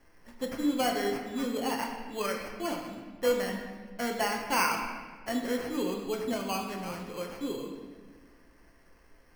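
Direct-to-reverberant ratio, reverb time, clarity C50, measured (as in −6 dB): 1.0 dB, 1.5 s, 4.5 dB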